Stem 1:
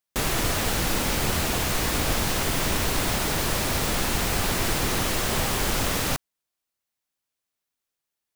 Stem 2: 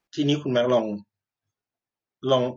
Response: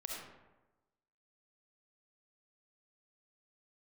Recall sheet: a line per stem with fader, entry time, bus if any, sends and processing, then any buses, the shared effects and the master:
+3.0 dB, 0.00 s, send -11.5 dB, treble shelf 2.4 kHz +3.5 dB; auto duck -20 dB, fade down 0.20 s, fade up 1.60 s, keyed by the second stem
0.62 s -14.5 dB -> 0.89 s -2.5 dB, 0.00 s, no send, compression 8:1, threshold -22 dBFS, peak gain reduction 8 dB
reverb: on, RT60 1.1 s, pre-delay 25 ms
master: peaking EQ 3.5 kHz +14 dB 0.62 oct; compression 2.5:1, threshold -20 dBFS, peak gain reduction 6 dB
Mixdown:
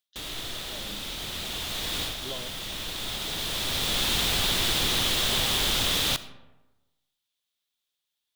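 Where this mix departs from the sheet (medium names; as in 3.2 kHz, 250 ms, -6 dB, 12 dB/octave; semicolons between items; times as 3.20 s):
stem 1 +3.0 dB -> -6.0 dB; stem 2 -14.5 dB -> -26.5 dB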